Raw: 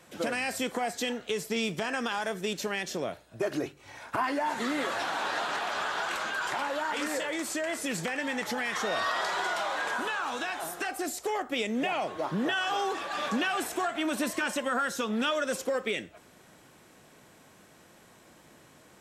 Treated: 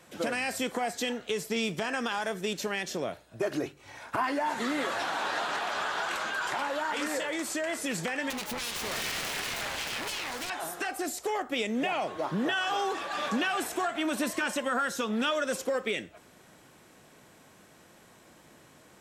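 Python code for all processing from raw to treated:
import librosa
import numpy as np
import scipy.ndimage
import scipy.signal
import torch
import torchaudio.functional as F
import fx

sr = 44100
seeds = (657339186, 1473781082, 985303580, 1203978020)

y = fx.chain(x, sr, fx.self_delay(depth_ms=0.6),
    fx.clip_hard(threshold_db=-29.5), at=(8.3, 10.5))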